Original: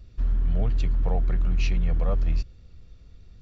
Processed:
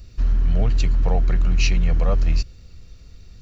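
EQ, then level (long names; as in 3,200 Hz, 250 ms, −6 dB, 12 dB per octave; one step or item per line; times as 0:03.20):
high-shelf EQ 3,100 Hz +11.5 dB
notch filter 3,400 Hz, Q 8.9
+5.0 dB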